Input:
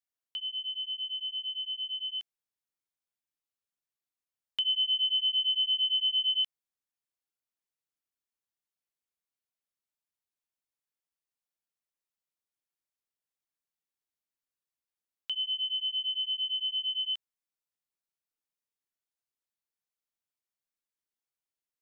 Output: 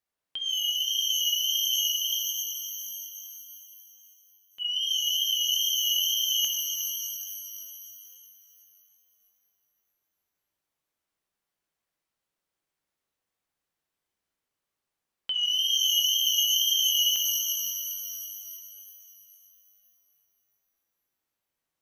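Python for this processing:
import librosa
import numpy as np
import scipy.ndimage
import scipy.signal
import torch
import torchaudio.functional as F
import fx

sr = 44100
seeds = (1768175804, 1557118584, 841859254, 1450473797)

y = fx.high_shelf(x, sr, hz=2400.0, db=-9.0)
y = fx.over_compress(y, sr, threshold_db=-36.0, ratio=-0.5)
y = fx.transient(y, sr, attack_db=-2, sustain_db=11)
y = fx.level_steps(y, sr, step_db=19, at=(1.87, 4.6))
y = fx.wow_flutter(y, sr, seeds[0], rate_hz=2.1, depth_cents=80.0)
y = fx.rev_shimmer(y, sr, seeds[1], rt60_s=3.0, semitones=12, shimmer_db=-2, drr_db=2.0)
y = F.gain(torch.from_numpy(y), 8.0).numpy()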